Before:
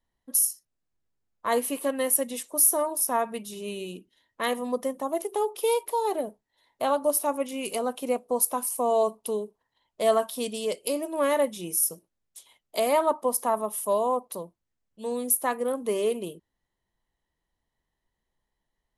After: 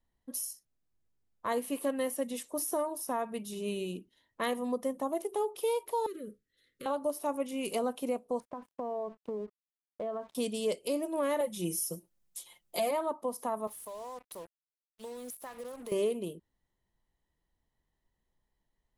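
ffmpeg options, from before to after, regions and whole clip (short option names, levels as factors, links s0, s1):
-filter_complex "[0:a]asettb=1/sr,asplit=3[s0][s1][s2];[s0]atrim=end=6.064[s3];[s1]atrim=start=6.06:end=6.86,asetpts=PTS-STARTPTS,afade=t=in:d=0.004:c=qsin,afade=t=out:st=0.796:d=0.004:c=qsin,acompressor=threshold=0.0178:ratio=3:attack=3.2:release=140:knee=1:detection=peak,asuperstop=centerf=810:order=12:qfactor=1.2[s4];[s2]atrim=start=6.856[s5];[s3][s4]acrossfade=d=0.004:c1=hsin:c2=qsin[s6];[s6][s5]acrossfade=d=0.004:c1=qsin:c2=hsin,asettb=1/sr,asplit=3[s7][s8][s9];[s7]atrim=end=8.404[s10];[s8]atrim=start=8.4:end=10.35,asetpts=PTS-STARTPTS,afade=t=in:d=0.004:c=qsin,afade=t=out:st=1.946:d=0.004:c=qsin,lowpass=1400,aeval=exprs='sgn(val(0))*max(abs(val(0))-0.002,0)':c=same,acompressor=threshold=0.0251:ratio=6:attack=3.2:release=140:knee=1:detection=peak[s11];[s9]atrim=start=10.346[s12];[s10][s11]acrossfade=d=0.004:c1=hsin:c2=qsin[s13];[s13][s12]acrossfade=d=0.004:c1=qsin:c2=hsin,asettb=1/sr,asplit=3[s14][s15][s16];[s14]atrim=end=11.404[s17];[s15]atrim=start=11.4:end=12.91,asetpts=PTS-STARTPTS,afade=t=in:d=0.004:c=qsin,afade=t=out:st=1.506:d=0.004:c=qsin,highshelf=f=6000:g=9,aecho=1:1:5.7:0.9,atrim=end_sample=66591[s18];[s16]atrim=start=12.906[s19];[s17][s18]acrossfade=d=0.004:c1=hsin:c2=qsin[s20];[s20][s19]acrossfade=d=0.004:c1=qsin:c2=hsin,asettb=1/sr,asplit=3[s21][s22][s23];[s21]atrim=end=13.674[s24];[s22]atrim=start=13.67:end=15.92,asetpts=PTS-STARTPTS,afade=t=in:d=0.004:c=qsin,afade=t=out:st=2.246:d=0.004:c=qsin,highpass=f=690:p=1,acompressor=threshold=0.0141:ratio=12:attack=3.2:release=140:knee=1:detection=peak,acrusher=bits=7:mix=0:aa=0.5[s25];[s23]atrim=start=15.916[s26];[s24][s25]acrossfade=d=0.004:c1=hsin:c2=qsin[s27];[s27][s26]acrossfade=d=0.004:c1=qsin:c2=hsin,acrossover=split=5500[s28][s29];[s29]acompressor=threshold=0.0251:ratio=4:attack=1:release=60[s30];[s28][s30]amix=inputs=2:normalize=0,lowshelf=f=420:g=5.5,alimiter=limit=0.112:level=0:latency=1:release=384,volume=0.668"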